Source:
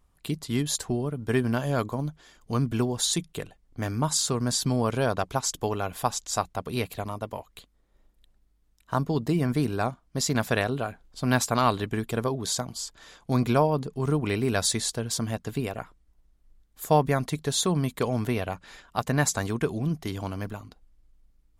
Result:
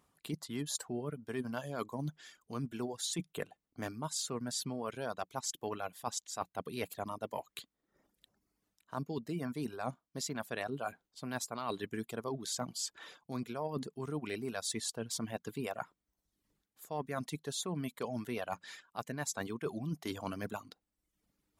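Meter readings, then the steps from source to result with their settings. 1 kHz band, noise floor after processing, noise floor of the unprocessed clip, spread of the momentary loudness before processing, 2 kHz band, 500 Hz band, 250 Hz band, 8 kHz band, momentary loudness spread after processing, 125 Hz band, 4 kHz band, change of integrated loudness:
-12.0 dB, under -85 dBFS, -66 dBFS, 11 LU, -11.5 dB, -11.5 dB, -12.0 dB, -10.5 dB, 7 LU, -16.0 dB, -10.5 dB, -12.5 dB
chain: HPF 160 Hz 12 dB/oct; reverb removal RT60 0.71 s; reverse; compressor 10:1, threshold -36 dBFS, peak gain reduction 21.5 dB; reverse; gain +1.5 dB

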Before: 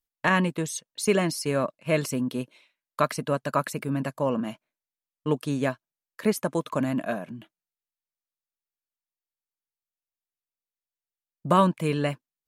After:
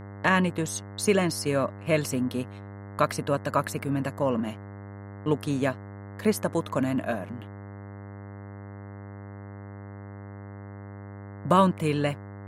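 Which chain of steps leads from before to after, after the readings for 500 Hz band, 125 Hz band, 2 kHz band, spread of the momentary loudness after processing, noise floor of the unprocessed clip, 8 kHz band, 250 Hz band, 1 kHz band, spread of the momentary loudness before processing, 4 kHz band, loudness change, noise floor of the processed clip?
0.0 dB, +1.0 dB, 0.0 dB, 18 LU, under -85 dBFS, 0.0 dB, 0.0 dB, 0.0 dB, 12 LU, 0.0 dB, 0.0 dB, -41 dBFS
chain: gate -48 dBFS, range -18 dB; buzz 100 Hz, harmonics 21, -41 dBFS -6 dB/oct

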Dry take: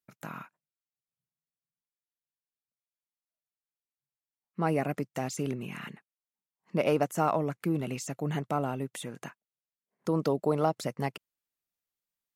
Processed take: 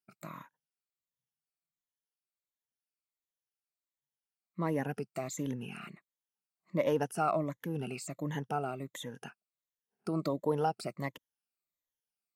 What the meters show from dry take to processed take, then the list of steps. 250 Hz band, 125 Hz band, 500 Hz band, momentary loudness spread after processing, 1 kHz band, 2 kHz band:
-4.5 dB, -5.0 dB, -4.0 dB, 17 LU, -3.5 dB, -4.0 dB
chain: moving spectral ripple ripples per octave 1.1, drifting -1.4 Hz, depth 14 dB; gain -6.5 dB

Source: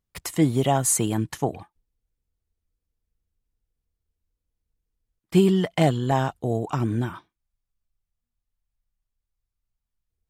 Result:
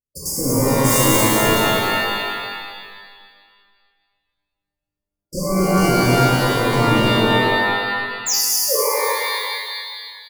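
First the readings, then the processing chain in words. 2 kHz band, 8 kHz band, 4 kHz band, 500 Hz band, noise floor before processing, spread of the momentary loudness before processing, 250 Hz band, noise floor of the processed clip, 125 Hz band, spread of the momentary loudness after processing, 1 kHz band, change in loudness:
+18.5 dB, +9.5 dB, +17.5 dB, +8.0 dB, -84 dBFS, 9 LU, +5.0 dB, -84 dBFS, +5.0 dB, 13 LU, +11.0 dB, +6.0 dB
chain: gate with hold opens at -35 dBFS; low shelf 190 Hz -7 dB; in parallel at -0.5 dB: compressor, threshold -29 dBFS, peak gain reduction 13.5 dB; on the sum: painted sound fall, 8.26–8.76, 410–7600 Hz -21 dBFS; wavefolder -20.5 dBFS; brick-wall FIR band-stop 600–4500 Hz; echo 0.234 s -4 dB; shimmer reverb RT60 1.8 s, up +12 st, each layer -2 dB, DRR -7.5 dB; gain +1 dB

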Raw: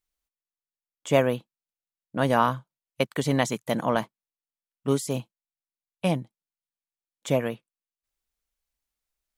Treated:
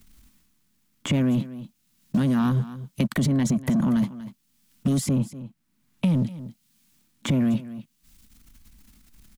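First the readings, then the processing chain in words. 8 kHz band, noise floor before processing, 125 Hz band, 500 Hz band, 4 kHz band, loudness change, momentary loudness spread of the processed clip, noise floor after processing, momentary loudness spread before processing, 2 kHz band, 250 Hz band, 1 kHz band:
+1.5 dB, under -85 dBFS, +6.5 dB, -9.5 dB, -1.0 dB, +2.0 dB, 18 LU, -69 dBFS, 14 LU, -5.0 dB, +7.5 dB, -10.0 dB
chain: resonant low shelf 330 Hz +12.5 dB, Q 3; compressor, threshold -14 dBFS, peak gain reduction 9 dB; transient shaper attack -9 dB, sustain +8 dB; limiter -20.5 dBFS, peak gain reduction 11 dB; sample leveller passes 1; notch 780 Hz, Q 19; echo 0.241 s -19 dB; three-band squash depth 70%; gain +4 dB

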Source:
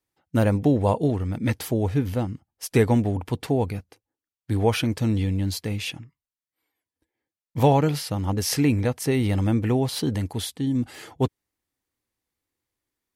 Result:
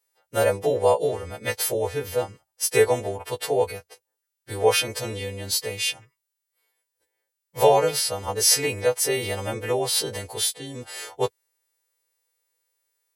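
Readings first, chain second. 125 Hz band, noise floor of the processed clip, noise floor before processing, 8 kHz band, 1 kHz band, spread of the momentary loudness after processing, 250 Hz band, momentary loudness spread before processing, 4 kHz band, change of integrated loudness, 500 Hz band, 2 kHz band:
-11.5 dB, -83 dBFS, under -85 dBFS, +10.0 dB, +2.5 dB, 13 LU, -13.5 dB, 9 LU, +7.0 dB, +0.5 dB, +4.0 dB, +4.5 dB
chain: frequency quantiser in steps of 2 st; resonant low shelf 350 Hz -9.5 dB, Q 3

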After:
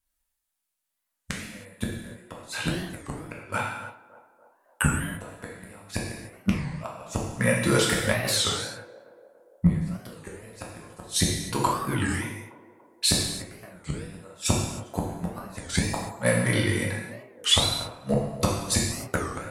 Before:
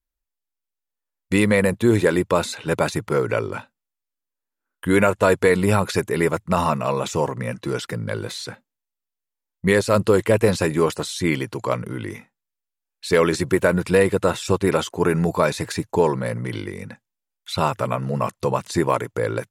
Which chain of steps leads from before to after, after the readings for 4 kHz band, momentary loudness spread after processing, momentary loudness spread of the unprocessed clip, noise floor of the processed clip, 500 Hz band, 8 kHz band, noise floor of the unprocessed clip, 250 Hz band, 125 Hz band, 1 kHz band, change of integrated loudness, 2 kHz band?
+4.5 dB, 19 LU, 12 LU, -81 dBFS, -12.5 dB, +4.0 dB, -85 dBFS, -7.0 dB, -4.0 dB, -8.0 dB, -5.5 dB, -5.0 dB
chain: low shelf 120 Hz -8 dB; transient shaper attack +5 dB, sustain 0 dB; flipped gate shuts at -12 dBFS, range -36 dB; fifteen-band EQ 100 Hz +4 dB, 400 Hz -10 dB, 10000 Hz +7 dB; on a send: narrowing echo 0.288 s, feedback 62%, band-pass 570 Hz, level -15 dB; on the sum: non-linear reverb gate 0.34 s falling, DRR -3 dB; record warp 33 1/3 rpm, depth 250 cents; gain +3 dB

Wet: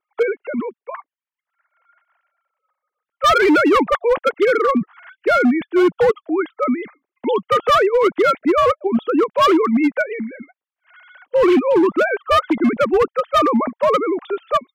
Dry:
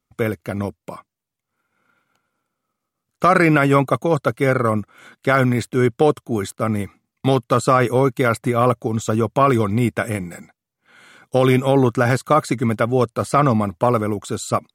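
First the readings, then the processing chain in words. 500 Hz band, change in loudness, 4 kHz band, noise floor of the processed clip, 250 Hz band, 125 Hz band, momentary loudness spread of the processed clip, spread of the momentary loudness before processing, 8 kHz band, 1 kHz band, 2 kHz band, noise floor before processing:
+2.5 dB, +1.5 dB, +5.5 dB, under -85 dBFS, +2.0 dB, -19.0 dB, 11 LU, 10 LU, n/a, +2.0 dB, +1.5 dB, -83 dBFS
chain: sine-wave speech; hard clip -13 dBFS, distortion -12 dB; gain +3 dB

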